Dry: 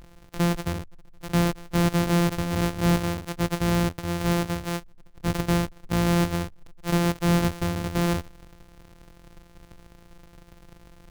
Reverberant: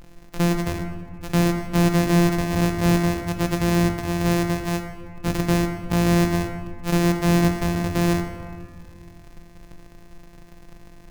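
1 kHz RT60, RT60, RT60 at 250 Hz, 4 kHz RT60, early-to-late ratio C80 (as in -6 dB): 1.8 s, 1.9 s, 2.5 s, 1.2 s, 8.0 dB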